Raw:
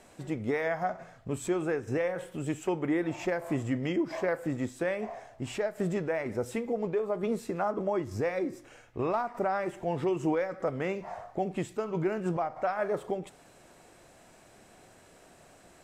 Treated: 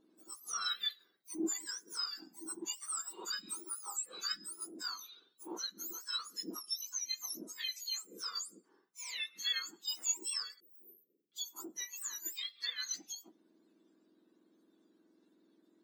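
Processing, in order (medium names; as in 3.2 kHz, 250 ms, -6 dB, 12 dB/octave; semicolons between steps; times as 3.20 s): spectrum inverted on a logarithmic axis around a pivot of 1.6 kHz; 10.60–11.32 s: inverse Chebyshev band-stop 1.8–4.6 kHz, stop band 80 dB; spectral contrast expander 1.5:1; trim -3.5 dB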